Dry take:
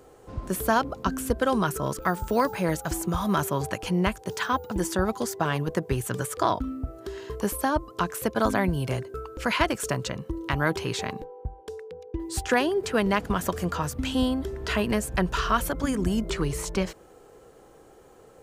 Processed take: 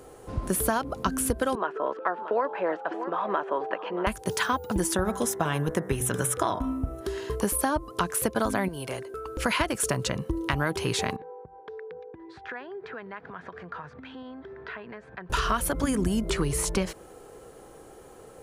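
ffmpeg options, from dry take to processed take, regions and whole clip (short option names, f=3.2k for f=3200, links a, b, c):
-filter_complex "[0:a]asettb=1/sr,asplit=3[a][b][c];[a]atrim=end=1.554[d];[b]atrim=start=1.55:end=4.07,asetpts=PTS-STARTPTS,afade=t=in:d=0.004:c=qsin,afade=t=out:st=2.516:d=0.004:c=qsin,highpass=f=350:w=0.5412,highpass=f=350:w=1.3066,equalizer=f=350:t=q:w=4:g=-3,equalizer=f=1.3k:t=q:w=4:g=-3,equalizer=f=2.2k:t=q:w=4:g=-9,lowpass=f=2.4k:w=0.5412,lowpass=f=2.4k:w=1.3066,aecho=1:1:629:0.168,atrim=end_sample=111132[e];[c]atrim=start=4.066[f];[d][e]acrossfade=d=0.004:c1=hsin:c2=qsin[g];[g][f]acrossfade=d=0.004:c1=qsin:c2=hsin,asettb=1/sr,asplit=3[h][i][j];[h]atrim=end=4.944[k];[i]atrim=start=4.94:end=7.01,asetpts=PTS-STARTPTS,afade=t=in:d=0.004:c=qsin,afade=t=out:st=2.066:d=0.004:c=qsin,asuperstop=centerf=4600:order=8:qfactor=6.5,bandreject=f=63.49:t=h:w=4,bandreject=f=126.98:t=h:w=4,bandreject=f=190.47:t=h:w=4,bandreject=f=253.96:t=h:w=4,bandreject=f=317.45:t=h:w=4,bandreject=f=380.94:t=h:w=4,bandreject=f=444.43:t=h:w=4,bandreject=f=507.92:t=h:w=4,bandreject=f=571.41:t=h:w=4,bandreject=f=634.9:t=h:w=4,bandreject=f=698.39:t=h:w=4,bandreject=f=761.88:t=h:w=4,bandreject=f=825.37:t=h:w=4,bandreject=f=888.86:t=h:w=4,bandreject=f=952.35:t=h:w=4,bandreject=f=1.01584k:t=h:w=4,bandreject=f=1.07933k:t=h:w=4,bandreject=f=1.14282k:t=h:w=4,bandreject=f=1.20631k:t=h:w=4,bandreject=f=1.2698k:t=h:w=4,bandreject=f=1.33329k:t=h:w=4,bandreject=f=1.39678k:t=h:w=4,bandreject=f=1.46027k:t=h:w=4,bandreject=f=1.52376k:t=h:w=4,bandreject=f=1.58725k:t=h:w=4,bandreject=f=1.65074k:t=h:w=4,bandreject=f=1.71423k:t=h:w=4,bandreject=f=1.77772k:t=h:w=4,bandreject=f=1.84121k:t=h:w=4,bandreject=f=1.9047k:t=h:w=4,bandreject=f=1.96819k:t=h:w=4,bandreject=f=2.03168k:t=h:w=4,bandreject=f=2.09517k:t=h:w=4,bandreject=f=2.15866k:t=h:w=4[l];[j]atrim=start=7.006[m];[k][l]acrossfade=d=0.004:c1=hsin:c2=qsin[n];[n][m]acrossfade=d=0.004:c1=qsin:c2=hsin,asettb=1/sr,asplit=3[o][p][q];[o]atrim=end=8.684[r];[p]atrim=start=8.68:end=9.26,asetpts=PTS-STARTPTS,afade=t=in:d=0.004:c=qsin,afade=t=out:st=0.576:d=0.004:c=qsin,bass=f=250:g=-12,treble=f=4k:g=-2,acompressor=threshold=-42dB:ratio=1.5:attack=3.2:release=140:knee=1:detection=peak[s];[q]atrim=start=9.256[t];[r][s]acrossfade=d=0.004:c1=hsin:c2=qsin[u];[u][t]acrossfade=d=0.004:c1=qsin:c2=hsin,asettb=1/sr,asplit=3[v][w][x];[v]atrim=end=11.164[y];[w]atrim=start=11.16:end=15.3,asetpts=PTS-STARTPTS,afade=t=in:d=0.004:c=qsin,afade=t=out:st=4.136:d=0.004:c=qsin,acompressor=threshold=-38dB:ratio=6:attack=3.2:release=140:knee=1:detection=peak,highpass=190,equalizer=f=210:t=q:w=4:g=-7,equalizer=f=310:t=q:w=4:g=-9,equalizer=f=570:t=q:w=4:g=-5,equalizer=f=1.6k:t=q:w=4:g=5,equalizer=f=2.9k:t=q:w=4:g=-9,lowpass=f=3.1k:w=0.5412,lowpass=f=3.1k:w=1.3066[z];[x]atrim=start=15.296[aa];[y][z]acrossfade=d=0.004:c1=hsin:c2=qsin[ab];[ab][aa]acrossfade=d=0.004:c1=qsin:c2=hsin,equalizer=f=10k:t=o:w=0.26:g=9,acompressor=threshold=-26dB:ratio=6,volume=4dB"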